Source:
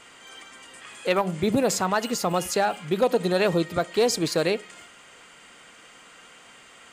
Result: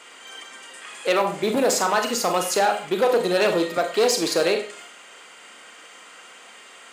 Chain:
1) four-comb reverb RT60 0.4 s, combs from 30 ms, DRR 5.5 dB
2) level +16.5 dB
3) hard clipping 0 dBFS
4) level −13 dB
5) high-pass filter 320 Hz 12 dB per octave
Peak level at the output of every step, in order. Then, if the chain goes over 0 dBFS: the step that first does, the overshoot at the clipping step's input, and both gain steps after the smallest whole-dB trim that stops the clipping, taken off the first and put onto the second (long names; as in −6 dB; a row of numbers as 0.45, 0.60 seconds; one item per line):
−8.0, +8.5, 0.0, −13.0, −7.5 dBFS
step 2, 8.5 dB
step 2 +7.5 dB, step 4 −4 dB